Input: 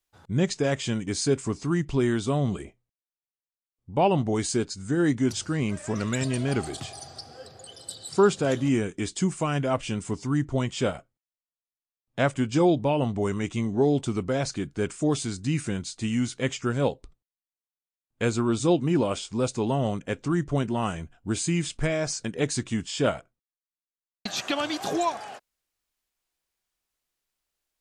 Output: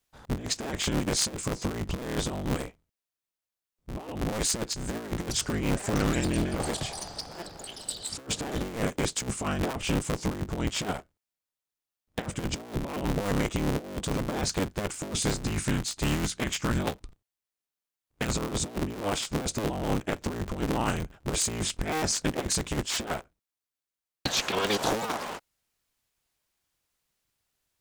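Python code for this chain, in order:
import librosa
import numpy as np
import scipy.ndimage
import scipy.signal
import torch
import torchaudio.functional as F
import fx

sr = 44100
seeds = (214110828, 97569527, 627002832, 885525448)

y = fx.cycle_switch(x, sr, every=3, mode='inverted')
y = fx.dynamic_eq(y, sr, hz=510.0, q=1.0, threshold_db=-39.0, ratio=4.0, max_db=-7, at=(15.42, 18.36))
y = fx.over_compress(y, sr, threshold_db=-28.0, ratio=-0.5)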